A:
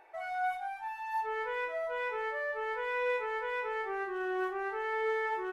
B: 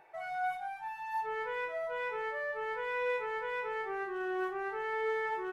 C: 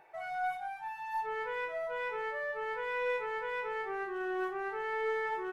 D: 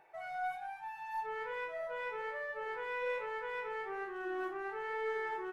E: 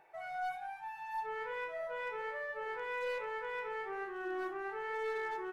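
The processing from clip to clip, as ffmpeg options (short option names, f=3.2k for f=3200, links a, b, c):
-af "equalizer=f=150:t=o:w=0.49:g=13,volume=-1.5dB"
-af "aeval=exprs='0.0631*(cos(1*acos(clip(val(0)/0.0631,-1,1)))-cos(1*PI/2))+0.00112*(cos(4*acos(clip(val(0)/0.0631,-1,1)))-cos(4*PI/2))':c=same"
-af "flanger=delay=9.3:depth=4.2:regen=-88:speed=1.2:shape=sinusoidal,volume=1dB"
-af "volume=32.5dB,asoftclip=hard,volume=-32.5dB"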